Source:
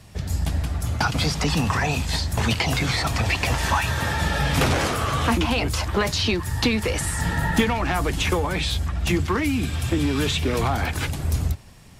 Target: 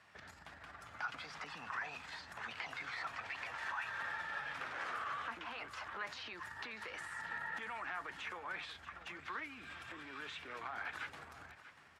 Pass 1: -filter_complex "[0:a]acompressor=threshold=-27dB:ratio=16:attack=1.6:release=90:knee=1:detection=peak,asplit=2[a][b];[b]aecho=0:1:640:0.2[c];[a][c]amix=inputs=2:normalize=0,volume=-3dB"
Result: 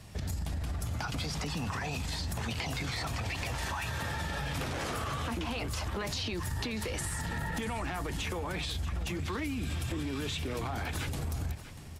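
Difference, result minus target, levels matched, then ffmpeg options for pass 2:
2000 Hz band -6.0 dB
-filter_complex "[0:a]acompressor=threshold=-27dB:ratio=16:attack=1.6:release=90:knee=1:detection=peak,bandpass=f=1.5k:t=q:w=1.9:csg=0,asplit=2[a][b];[b]aecho=0:1:640:0.2[c];[a][c]amix=inputs=2:normalize=0,volume=-3dB"

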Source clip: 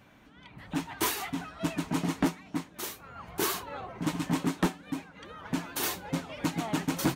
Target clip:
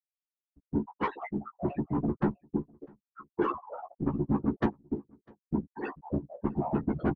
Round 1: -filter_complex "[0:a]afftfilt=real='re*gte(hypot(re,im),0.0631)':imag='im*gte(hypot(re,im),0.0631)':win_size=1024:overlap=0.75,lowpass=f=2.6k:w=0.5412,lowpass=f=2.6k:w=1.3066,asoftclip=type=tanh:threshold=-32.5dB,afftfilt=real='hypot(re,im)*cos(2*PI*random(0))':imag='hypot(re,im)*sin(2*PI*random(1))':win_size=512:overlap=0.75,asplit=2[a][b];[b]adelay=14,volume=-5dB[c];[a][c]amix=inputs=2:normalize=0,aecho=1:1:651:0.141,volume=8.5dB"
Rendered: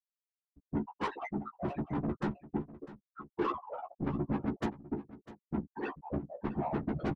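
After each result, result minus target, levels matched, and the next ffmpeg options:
echo-to-direct +11.5 dB; soft clip: distortion +8 dB
-filter_complex "[0:a]afftfilt=real='re*gte(hypot(re,im),0.0631)':imag='im*gte(hypot(re,im),0.0631)':win_size=1024:overlap=0.75,lowpass=f=2.6k:w=0.5412,lowpass=f=2.6k:w=1.3066,asoftclip=type=tanh:threshold=-32.5dB,afftfilt=real='hypot(re,im)*cos(2*PI*random(0))':imag='hypot(re,im)*sin(2*PI*random(1))':win_size=512:overlap=0.75,asplit=2[a][b];[b]adelay=14,volume=-5dB[c];[a][c]amix=inputs=2:normalize=0,aecho=1:1:651:0.0376,volume=8.5dB"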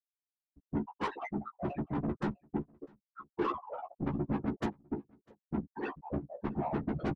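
soft clip: distortion +8 dB
-filter_complex "[0:a]afftfilt=real='re*gte(hypot(re,im),0.0631)':imag='im*gte(hypot(re,im),0.0631)':win_size=1024:overlap=0.75,lowpass=f=2.6k:w=0.5412,lowpass=f=2.6k:w=1.3066,asoftclip=type=tanh:threshold=-23.5dB,afftfilt=real='hypot(re,im)*cos(2*PI*random(0))':imag='hypot(re,im)*sin(2*PI*random(1))':win_size=512:overlap=0.75,asplit=2[a][b];[b]adelay=14,volume=-5dB[c];[a][c]amix=inputs=2:normalize=0,aecho=1:1:651:0.0376,volume=8.5dB"

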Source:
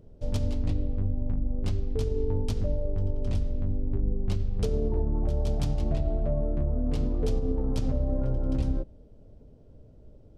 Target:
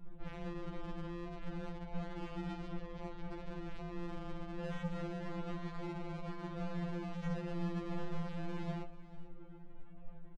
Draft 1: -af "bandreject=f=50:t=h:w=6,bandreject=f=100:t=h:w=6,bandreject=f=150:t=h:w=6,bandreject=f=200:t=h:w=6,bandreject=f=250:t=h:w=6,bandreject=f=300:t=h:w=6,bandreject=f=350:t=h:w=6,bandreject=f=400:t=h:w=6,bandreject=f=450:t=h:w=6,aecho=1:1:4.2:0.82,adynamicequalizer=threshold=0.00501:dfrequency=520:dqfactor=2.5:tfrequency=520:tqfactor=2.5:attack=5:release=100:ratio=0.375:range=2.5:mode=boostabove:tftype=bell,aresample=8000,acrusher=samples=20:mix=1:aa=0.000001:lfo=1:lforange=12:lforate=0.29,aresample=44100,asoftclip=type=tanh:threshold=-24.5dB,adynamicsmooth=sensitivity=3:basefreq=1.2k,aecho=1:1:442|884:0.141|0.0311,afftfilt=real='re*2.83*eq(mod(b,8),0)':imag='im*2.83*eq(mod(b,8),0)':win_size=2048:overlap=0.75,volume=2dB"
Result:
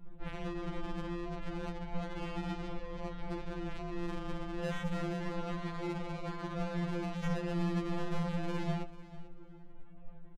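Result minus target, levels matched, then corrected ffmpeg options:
soft clip: distortion -4 dB
-af "bandreject=f=50:t=h:w=6,bandreject=f=100:t=h:w=6,bandreject=f=150:t=h:w=6,bandreject=f=200:t=h:w=6,bandreject=f=250:t=h:w=6,bandreject=f=300:t=h:w=6,bandreject=f=350:t=h:w=6,bandreject=f=400:t=h:w=6,bandreject=f=450:t=h:w=6,aecho=1:1:4.2:0.82,adynamicequalizer=threshold=0.00501:dfrequency=520:dqfactor=2.5:tfrequency=520:tqfactor=2.5:attack=5:release=100:ratio=0.375:range=2.5:mode=boostabove:tftype=bell,aresample=8000,acrusher=samples=20:mix=1:aa=0.000001:lfo=1:lforange=12:lforate=0.29,aresample=44100,asoftclip=type=tanh:threshold=-31.5dB,adynamicsmooth=sensitivity=3:basefreq=1.2k,aecho=1:1:442|884:0.141|0.0311,afftfilt=real='re*2.83*eq(mod(b,8),0)':imag='im*2.83*eq(mod(b,8),0)':win_size=2048:overlap=0.75,volume=2dB"

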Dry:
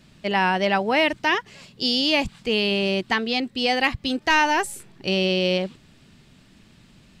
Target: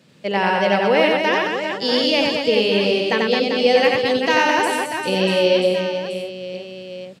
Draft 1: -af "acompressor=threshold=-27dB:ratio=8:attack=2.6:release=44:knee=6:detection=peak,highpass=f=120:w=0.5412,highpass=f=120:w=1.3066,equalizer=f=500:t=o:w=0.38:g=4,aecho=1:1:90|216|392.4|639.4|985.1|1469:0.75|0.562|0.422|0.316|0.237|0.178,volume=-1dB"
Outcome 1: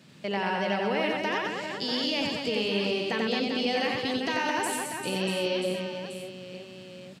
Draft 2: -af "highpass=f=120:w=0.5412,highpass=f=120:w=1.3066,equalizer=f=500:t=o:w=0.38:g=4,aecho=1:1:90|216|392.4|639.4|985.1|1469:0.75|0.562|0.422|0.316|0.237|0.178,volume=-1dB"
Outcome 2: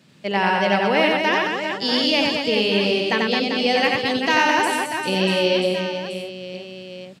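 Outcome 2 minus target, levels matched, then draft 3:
500 Hz band -3.0 dB
-af "highpass=f=120:w=0.5412,highpass=f=120:w=1.3066,equalizer=f=500:t=o:w=0.38:g=11.5,aecho=1:1:90|216|392.4|639.4|985.1|1469:0.75|0.562|0.422|0.316|0.237|0.178,volume=-1dB"

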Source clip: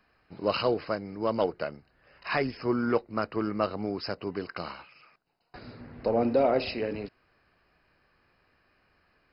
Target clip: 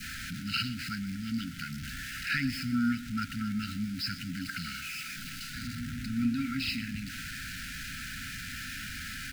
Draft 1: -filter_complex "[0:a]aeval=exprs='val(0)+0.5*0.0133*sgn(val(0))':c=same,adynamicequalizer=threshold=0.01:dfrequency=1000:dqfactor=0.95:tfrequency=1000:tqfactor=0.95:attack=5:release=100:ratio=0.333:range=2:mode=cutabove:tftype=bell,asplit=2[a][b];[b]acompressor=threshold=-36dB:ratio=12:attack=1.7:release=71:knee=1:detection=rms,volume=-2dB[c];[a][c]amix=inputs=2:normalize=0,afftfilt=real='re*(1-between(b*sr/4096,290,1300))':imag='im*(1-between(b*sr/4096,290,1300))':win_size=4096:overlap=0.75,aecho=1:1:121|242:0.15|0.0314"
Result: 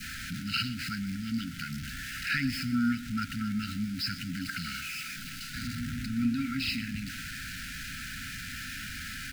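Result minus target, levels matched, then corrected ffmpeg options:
compressor: peak gain reduction -7 dB
-filter_complex "[0:a]aeval=exprs='val(0)+0.5*0.0133*sgn(val(0))':c=same,adynamicequalizer=threshold=0.01:dfrequency=1000:dqfactor=0.95:tfrequency=1000:tqfactor=0.95:attack=5:release=100:ratio=0.333:range=2:mode=cutabove:tftype=bell,asplit=2[a][b];[b]acompressor=threshold=-43.5dB:ratio=12:attack=1.7:release=71:knee=1:detection=rms,volume=-2dB[c];[a][c]amix=inputs=2:normalize=0,afftfilt=real='re*(1-between(b*sr/4096,290,1300))':imag='im*(1-between(b*sr/4096,290,1300))':win_size=4096:overlap=0.75,aecho=1:1:121|242:0.15|0.0314"

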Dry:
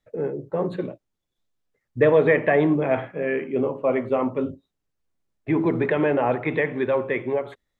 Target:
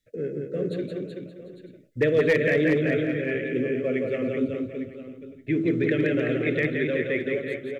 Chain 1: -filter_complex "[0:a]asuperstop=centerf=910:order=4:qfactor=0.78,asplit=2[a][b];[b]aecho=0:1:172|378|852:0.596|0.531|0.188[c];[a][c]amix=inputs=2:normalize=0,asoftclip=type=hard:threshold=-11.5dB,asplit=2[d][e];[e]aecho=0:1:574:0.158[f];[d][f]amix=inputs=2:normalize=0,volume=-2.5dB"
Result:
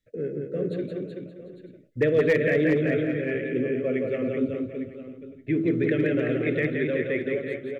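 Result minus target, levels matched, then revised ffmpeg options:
4000 Hz band -3.5 dB
-filter_complex "[0:a]asuperstop=centerf=910:order=4:qfactor=0.78,highshelf=f=3.2k:g=8,asplit=2[a][b];[b]aecho=0:1:172|378|852:0.596|0.531|0.188[c];[a][c]amix=inputs=2:normalize=0,asoftclip=type=hard:threshold=-11.5dB,asplit=2[d][e];[e]aecho=0:1:574:0.158[f];[d][f]amix=inputs=2:normalize=0,volume=-2.5dB"

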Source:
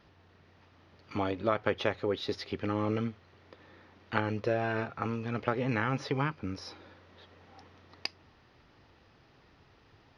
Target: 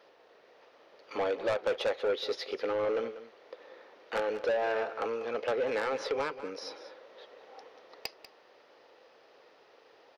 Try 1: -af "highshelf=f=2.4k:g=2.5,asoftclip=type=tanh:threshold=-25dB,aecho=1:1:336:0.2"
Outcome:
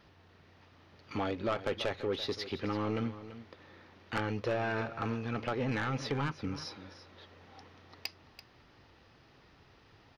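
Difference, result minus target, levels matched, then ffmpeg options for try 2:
echo 0.144 s late; 500 Hz band -4.0 dB
-af "highpass=f=500:t=q:w=3.5,highshelf=f=2.4k:g=2.5,asoftclip=type=tanh:threshold=-25dB,aecho=1:1:192:0.2"

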